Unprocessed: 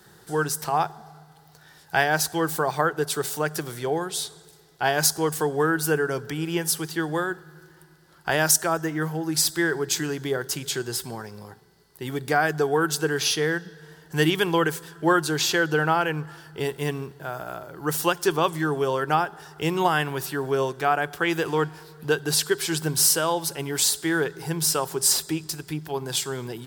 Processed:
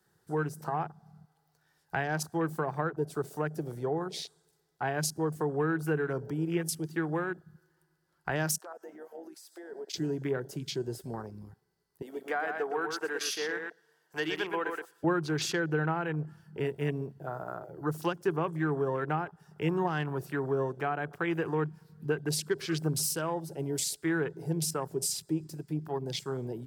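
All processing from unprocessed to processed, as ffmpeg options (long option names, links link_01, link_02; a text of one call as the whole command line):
ffmpeg -i in.wav -filter_complex "[0:a]asettb=1/sr,asplit=3[link_01][link_02][link_03];[link_01]atrim=end=8.594[link_04];[link_02]atrim=start=8.59:end=9.94,asetpts=PTS-STARTPTS,afade=type=in:duration=0.004:curve=qsin,afade=type=out:start_time=1.346:duration=0.004:curve=qsin,acompressor=threshold=-29dB:ratio=10:attack=3.2:release=140:knee=1:detection=peak,highpass=frequency=430:width=0.5412,highpass=frequency=430:width=1.3066[link_05];[link_03]atrim=start=9.936[link_06];[link_04][link_05]acrossfade=duration=0.004:curve1=hsin:curve2=qsin[link_07];[link_07][link_06]acrossfade=duration=0.004:curve1=qsin:curve2=hsin,asettb=1/sr,asplit=3[link_08][link_09][link_10];[link_08]atrim=end=12.024[link_11];[link_09]atrim=start=12.02:end=15.04,asetpts=PTS-STARTPTS,afade=type=in:duration=0.004:curve=qsin,afade=type=out:start_time=3.016:duration=0.004:curve=qsin,highpass=500,aecho=1:1:118|236|354:0.501|0.0752|0.0113,atrim=end_sample=133182[link_12];[link_10]atrim=start=15.036[link_13];[link_11][link_12]acrossfade=duration=0.004:curve1=hsin:curve2=qsin[link_14];[link_14][link_13]acrossfade=duration=0.004:curve1=qsin:curve2=hsin,afwtdn=0.0224,equalizer=frequency=3600:width_type=o:width=0.54:gain=-4,acrossover=split=320[link_15][link_16];[link_16]acompressor=threshold=-31dB:ratio=2.5[link_17];[link_15][link_17]amix=inputs=2:normalize=0,volume=-2.5dB" out.wav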